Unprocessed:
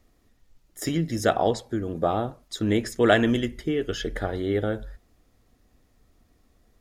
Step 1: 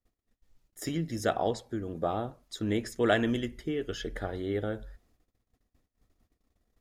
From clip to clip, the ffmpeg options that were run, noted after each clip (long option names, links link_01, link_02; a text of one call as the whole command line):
ffmpeg -i in.wav -af "agate=range=-21dB:threshold=-59dB:ratio=16:detection=peak,volume=-6.5dB" out.wav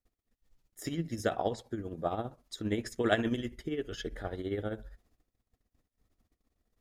ffmpeg -i in.wav -af "tremolo=f=15:d=0.63" out.wav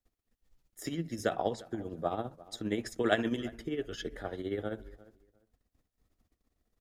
ffmpeg -i in.wav -filter_complex "[0:a]acrossover=split=150[link_01][link_02];[link_01]alimiter=level_in=19dB:limit=-24dB:level=0:latency=1:release=190,volume=-19dB[link_03];[link_03][link_02]amix=inputs=2:normalize=0,asplit=2[link_04][link_05];[link_05]adelay=350,lowpass=frequency=2000:poles=1,volume=-20dB,asplit=2[link_06][link_07];[link_07]adelay=350,lowpass=frequency=2000:poles=1,volume=0.21[link_08];[link_04][link_06][link_08]amix=inputs=3:normalize=0" out.wav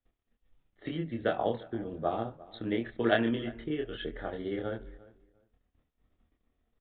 ffmpeg -i in.wav -filter_complex "[0:a]asplit=2[link_01][link_02];[link_02]adelay=26,volume=-2.5dB[link_03];[link_01][link_03]amix=inputs=2:normalize=0,aresample=8000,aresample=44100" out.wav